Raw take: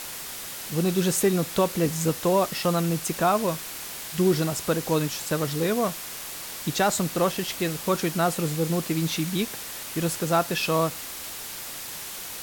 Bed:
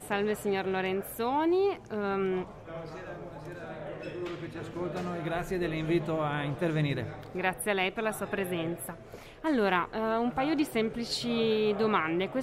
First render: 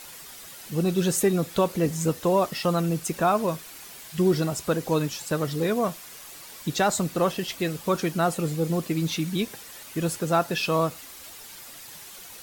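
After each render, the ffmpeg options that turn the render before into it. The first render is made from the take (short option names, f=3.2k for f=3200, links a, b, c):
-af "afftdn=nr=9:nf=-37"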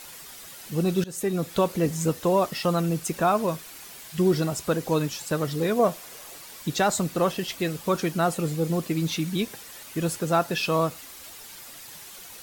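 -filter_complex "[0:a]asettb=1/sr,asplit=3[a][b][c];[a]atrim=end=5.794[d];[b]atrim=start=5.79:end=6.38,asetpts=PTS-STARTPTS,afade=t=in:d=0.004:c=qsin,afade=t=out:st=0.586:d=0.004:c=qsin,equalizer=f=550:t=o:w=1.3:g=7[e];[c]atrim=start=6.376[f];[d][e]acrossfade=d=0.004:c1=hsin:c2=qsin[g];[g][f]acrossfade=d=0.004:c1=qsin:c2=hsin,asplit=2[h][i];[h]atrim=end=1.04,asetpts=PTS-STARTPTS,afade=t=out:st=1.036:d=0.004:c=hsin:silence=0.0707946[j];[i]atrim=start=1.04,asetpts=PTS-STARTPTS,afade=t=in:d=0.63:c=qsin:silence=0.0707946[k];[j][k]concat=n=2:v=0:a=1"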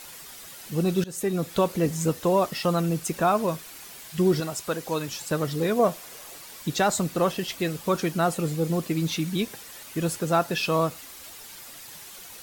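-filter_complex "[0:a]asettb=1/sr,asplit=3[a][b][c];[a]atrim=end=4.404[d];[b]atrim=start=4.4:end=5.08,asetpts=PTS-STARTPTS,afade=t=in:d=0.004:c=qsin,afade=t=out:st=0.676:d=0.004:c=qsin,lowshelf=f=440:g=-8.5[e];[c]atrim=start=5.076[f];[d][e]acrossfade=d=0.004:c1=hsin:c2=qsin[g];[g][f]acrossfade=d=0.004:c1=qsin:c2=hsin"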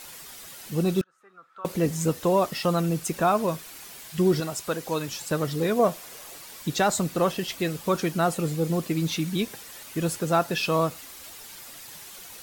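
-filter_complex "[0:a]asettb=1/sr,asplit=3[a][b][c];[a]atrim=end=1.014[d];[b]atrim=start=1.01:end=1.65,asetpts=PTS-STARTPTS,afade=t=in:d=0.004:c=qsin,afade=t=out:st=0.636:d=0.004:c=qsin,bandpass=f=1.3k:t=q:w=12[e];[c]atrim=start=1.646[f];[d][e]acrossfade=d=0.004:c1=hsin:c2=qsin[g];[g][f]acrossfade=d=0.004:c1=qsin:c2=hsin"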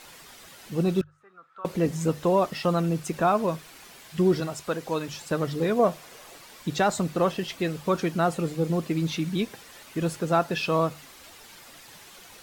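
-af "lowpass=f=3.8k:p=1,bandreject=f=50:t=h:w=6,bandreject=f=100:t=h:w=6,bandreject=f=150:t=h:w=6"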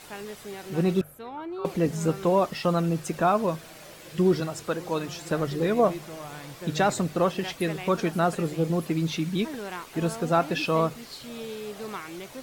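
-filter_complex "[1:a]volume=-9.5dB[a];[0:a][a]amix=inputs=2:normalize=0"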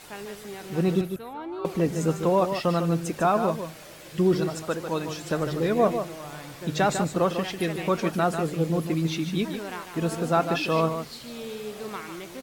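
-af "aecho=1:1:149:0.398"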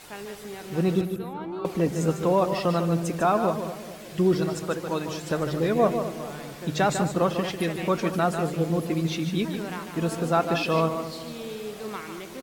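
-filter_complex "[0:a]asplit=2[a][b];[b]adelay=220,lowpass=f=900:p=1,volume=-11dB,asplit=2[c][d];[d]adelay=220,lowpass=f=900:p=1,volume=0.55,asplit=2[e][f];[f]adelay=220,lowpass=f=900:p=1,volume=0.55,asplit=2[g][h];[h]adelay=220,lowpass=f=900:p=1,volume=0.55,asplit=2[i][j];[j]adelay=220,lowpass=f=900:p=1,volume=0.55,asplit=2[k][l];[l]adelay=220,lowpass=f=900:p=1,volume=0.55[m];[a][c][e][g][i][k][m]amix=inputs=7:normalize=0"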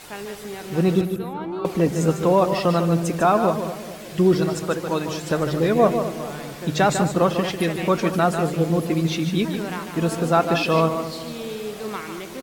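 -af "volume=4.5dB"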